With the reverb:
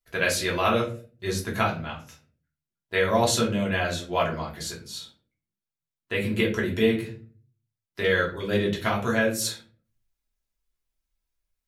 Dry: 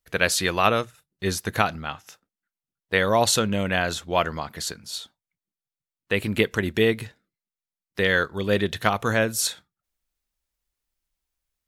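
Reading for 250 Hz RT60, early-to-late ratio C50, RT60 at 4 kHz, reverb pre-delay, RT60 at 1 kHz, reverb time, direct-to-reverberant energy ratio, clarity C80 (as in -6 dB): 0.65 s, 9.5 dB, 0.25 s, 3 ms, 0.35 s, 0.40 s, -4.0 dB, 14.5 dB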